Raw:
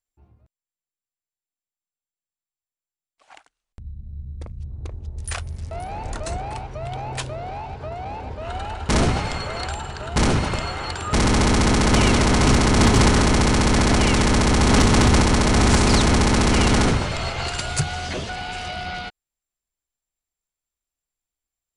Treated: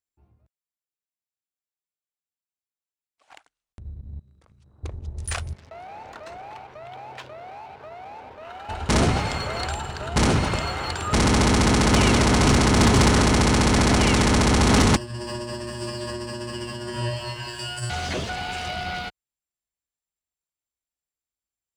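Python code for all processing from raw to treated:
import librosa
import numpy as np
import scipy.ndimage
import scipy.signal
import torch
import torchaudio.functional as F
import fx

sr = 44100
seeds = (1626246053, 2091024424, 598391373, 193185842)

y = fx.chain(x, sr, fx.highpass(hz=610.0, slope=6),
    fx.peak_eq(hz=1300.0, db=7.0, octaves=0.82),
    fx.over_compress(threshold_db=-50.0, ratio=-1.0), at=(4.19, 4.83))
y = fx.chain(y, sr, fx.highpass(hz=1300.0, slope=6),
    fx.spacing_loss(db_at_10k=30),
    fx.env_flatten(amount_pct=50), at=(5.53, 8.69))
y = fx.chain(y, sr, fx.comb_fb(f0_hz=120.0, decay_s=0.54, harmonics='all', damping=0.0, mix_pct=100),
    fx.over_compress(threshold_db=-35.0, ratio=-1.0),
    fx.ripple_eq(per_octave=1.3, db=18), at=(14.96, 17.9))
y = scipy.signal.sosfilt(scipy.signal.butter(2, 46.0, 'highpass', fs=sr, output='sos'), y)
y = fx.leveller(y, sr, passes=1)
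y = F.gain(torch.from_numpy(y), -3.5).numpy()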